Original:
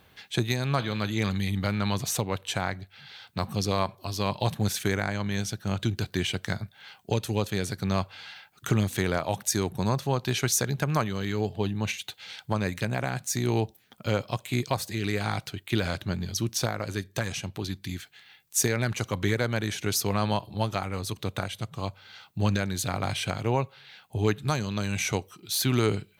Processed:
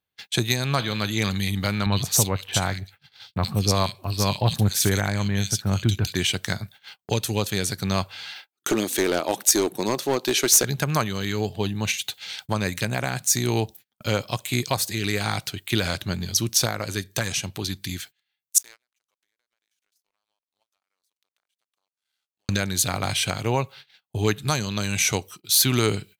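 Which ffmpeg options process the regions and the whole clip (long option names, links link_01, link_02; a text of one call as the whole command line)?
ffmpeg -i in.wav -filter_complex "[0:a]asettb=1/sr,asplit=3[link_01][link_02][link_03];[link_01]atrim=end=1.864[link_04];[link_02]atrim=start=1.86:end=6.15,asetpts=PTS-STARTPTS,afade=type=in:duration=0.004:curve=qsin,afade=type=out:start_time=4.286:duration=0.004:curve=qsin,lowshelf=frequency=110:gain=10,acrossover=split=2300[link_05][link_06];[link_06]adelay=60[link_07];[link_05][link_07]amix=inputs=2:normalize=0,atrim=end_sample=189189[link_08];[link_03]atrim=start=6.146[link_09];[link_04][link_08]acrossfade=duration=0.004:curve1=hsin:curve2=qsin[link_10];[link_10][link_09]acrossfade=duration=0.004:curve1=qsin:curve2=hsin,asettb=1/sr,asplit=3[link_11][link_12][link_13];[link_11]atrim=end=8.354[link_14];[link_12]atrim=start=8.35:end=10.64,asetpts=PTS-STARTPTS,afade=type=in:duration=0.004:curve=qsin,afade=type=out:start_time=2.286:duration=0.004:curve=qsin,highpass=frequency=320:width_type=q:width=2.5,aeval=exprs='clip(val(0),-1,0.0944)':channel_layout=same[link_15];[link_13]atrim=start=10.636[link_16];[link_14][link_15]acrossfade=duration=0.004:curve1=hsin:curve2=qsin[link_17];[link_17][link_16]acrossfade=duration=0.004:curve1=qsin:curve2=hsin,asettb=1/sr,asplit=3[link_18][link_19][link_20];[link_18]atrim=end=18.584[link_21];[link_19]atrim=start=18.58:end=22.49,asetpts=PTS-STARTPTS,afade=type=in:duration=0.004:curve=qsin,afade=type=out:start_time=3.906:duration=0.004:curve=qsin,highpass=690,acompressor=threshold=-44dB:ratio=16:attack=3.2:release=140:knee=1:detection=peak,aeval=exprs='sgn(val(0))*max(abs(val(0))-0.00237,0)':channel_layout=same[link_22];[link_20]atrim=start=22.486[link_23];[link_21][link_22]acrossfade=duration=0.004:curve1=hsin:curve2=qsin[link_24];[link_24][link_23]acrossfade=duration=0.004:curve1=qsin:curve2=hsin,agate=range=-33dB:threshold=-46dB:ratio=16:detection=peak,highshelf=frequency=2900:gain=9.5,volume=2dB" out.wav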